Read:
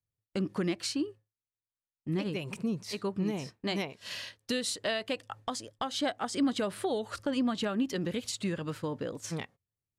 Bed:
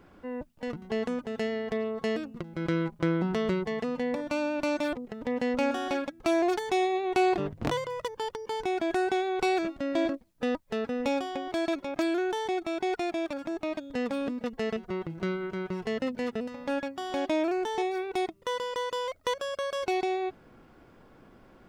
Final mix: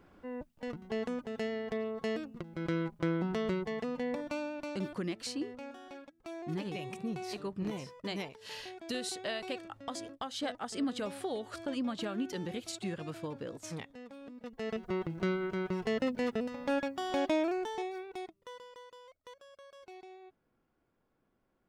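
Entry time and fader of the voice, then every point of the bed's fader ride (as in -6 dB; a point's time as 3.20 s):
4.40 s, -5.5 dB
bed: 4.22 s -5 dB
5.10 s -18.5 dB
14.21 s -18.5 dB
14.88 s -1 dB
17.23 s -1 dB
19.02 s -22.5 dB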